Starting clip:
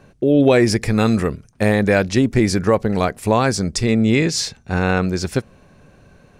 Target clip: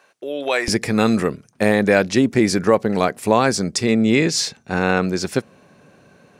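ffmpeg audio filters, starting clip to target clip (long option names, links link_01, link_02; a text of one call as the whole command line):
ffmpeg -i in.wav -af "asetnsamples=nb_out_samples=441:pad=0,asendcmd='0.68 highpass f 170',highpass=840,volume=1dB" out.wav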